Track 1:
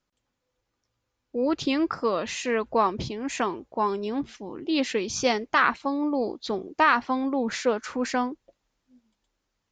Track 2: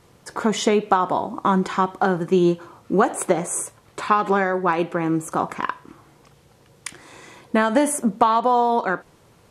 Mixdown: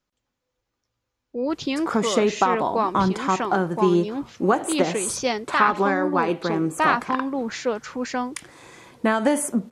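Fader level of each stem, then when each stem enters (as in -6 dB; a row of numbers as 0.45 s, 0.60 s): -0.5 dB, -2.0 dB; 0.00 s, 1.50 s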